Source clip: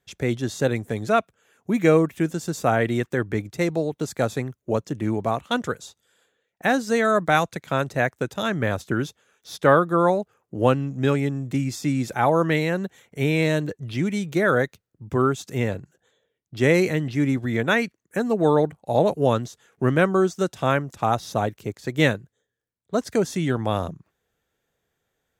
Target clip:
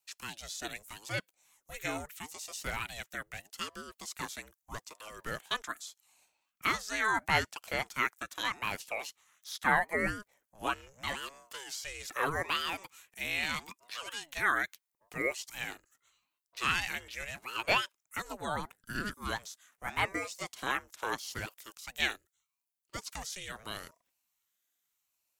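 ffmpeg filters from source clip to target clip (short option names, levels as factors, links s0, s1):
-filter_complex "[0:a]acrossover=split=5700[s0][s1];[s1]acompressor=threshold=0.00355:ratio=4:attack=1:release=60[s2];[s0][s2]amix=inputs=2:normalize=0,aderivative,acrossover=split=270|930|1800[s3][s4][s5][s6];[s5]dynaudnorm=f=460:g=21:m=3.16[s7];[s3][s4][s7][s6]amix=inputs=4:normalize=0,aeval=exprs='val(0)*sin(2*PI*520*n/s+520*0.65/0.79*sin(2*PI*0.79*n/s))':c=same,volume=1.68"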